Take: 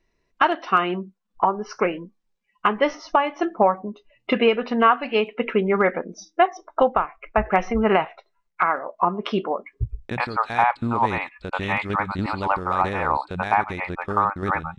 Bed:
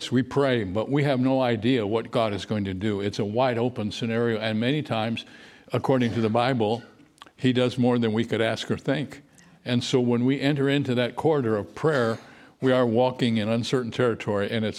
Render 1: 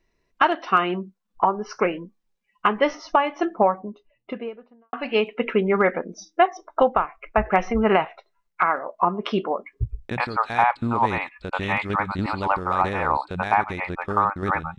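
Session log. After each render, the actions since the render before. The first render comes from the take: 3.35–4.93 studio fade out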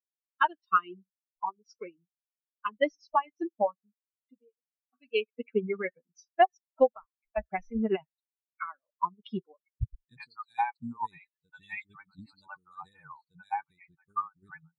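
per-bin expansion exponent 3; upward expander 1.5:1, over -40 dBFS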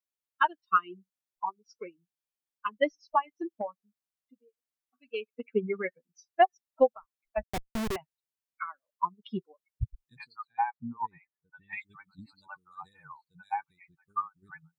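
3.32–5.48 compressor 4:1, threshold -30 dBFS; 7.43–7.96 Schmitt trigger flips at -31 dBFS; 10.47–11.73 LPF 1900 Hz 24 dB/oct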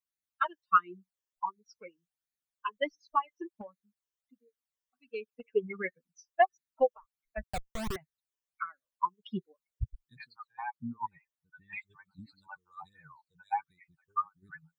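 phaser stages 12, 1.4 Hz, lowest notch 220–1000 Hz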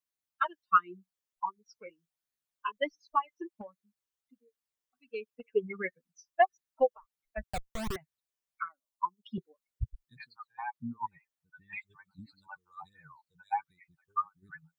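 1.84–2.72 doubler 19 ms -6.5 dB; 8.68–9.38 fixed phaser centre 450 Hz, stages 6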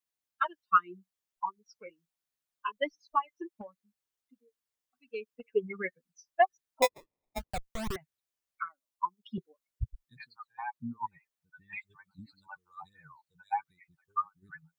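6.82–7.51 sample-rate reducer 1500 Hz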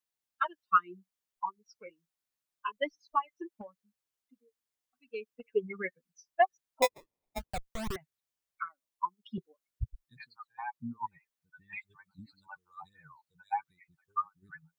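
gain -1 dB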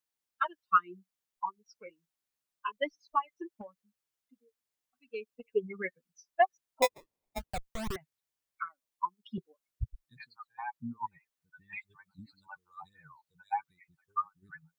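5.35–5.82 bell 1600 Hz -12.5 dB 0.61 oct

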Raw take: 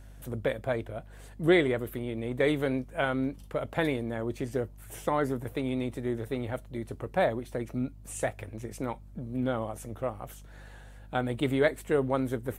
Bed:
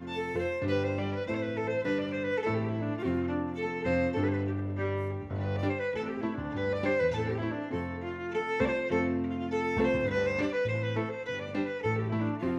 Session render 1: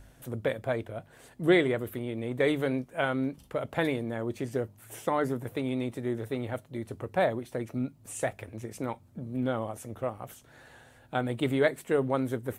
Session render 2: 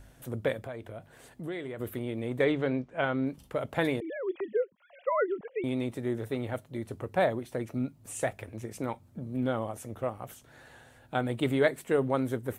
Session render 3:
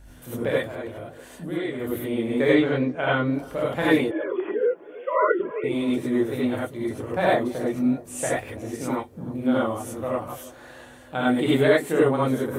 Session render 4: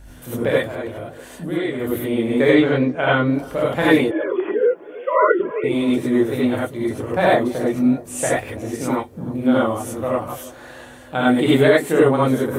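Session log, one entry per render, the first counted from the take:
de-hum 50 Hz, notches 4
0.66–1.8 compressor 3:1, threshold -38 dBFS; 2.44–3.27 air absorption 130 m; 4–5.64 sine-wave speech
band-limited delay 0.322 s, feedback 56%, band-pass 590 Hz, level -18.5 dB; non-linear reverb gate 0.12 s rising, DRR -7 dB
gain +5.5 dB; limiter -3 dBFS, peak gain reduction 3 dB

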